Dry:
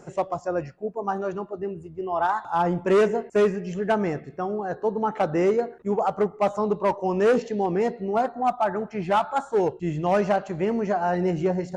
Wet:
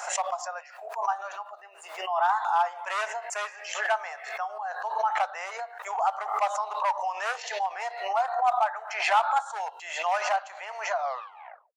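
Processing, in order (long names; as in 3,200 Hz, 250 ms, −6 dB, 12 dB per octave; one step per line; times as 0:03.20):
turntable brake at the end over 0.87 s
Butterworth high-pass 700 Hz 48 dB per octave
background raised ahead of every attack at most 67 dB per second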